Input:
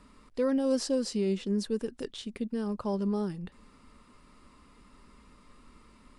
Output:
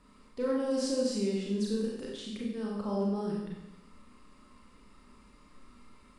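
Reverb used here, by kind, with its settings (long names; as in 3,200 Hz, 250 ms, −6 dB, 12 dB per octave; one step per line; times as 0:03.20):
four-comb reverb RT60 0.92 s, combs from 29 ms, DRR −3.5 dB
level −6 dB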